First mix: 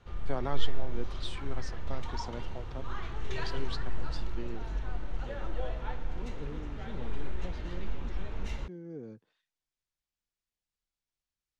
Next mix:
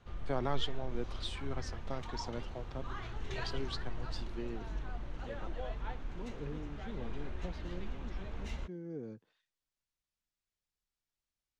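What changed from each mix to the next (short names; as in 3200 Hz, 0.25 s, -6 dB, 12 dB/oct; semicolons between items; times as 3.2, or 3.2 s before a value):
reverb: off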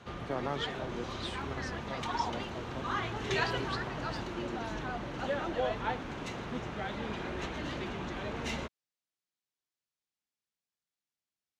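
second voice: muted; background +12.0 dB; master: add HPF 140 Hz 12 dB/oct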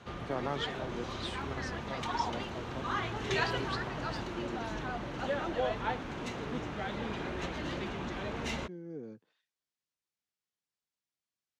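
second voice: unmuted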